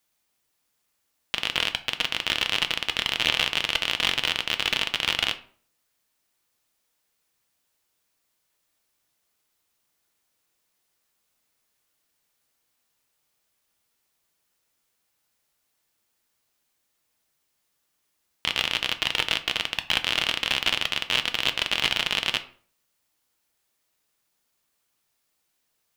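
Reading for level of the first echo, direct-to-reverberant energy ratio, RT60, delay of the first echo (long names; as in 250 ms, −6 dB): no echo audible, 8.0 dB, 0.50 s, no echo audible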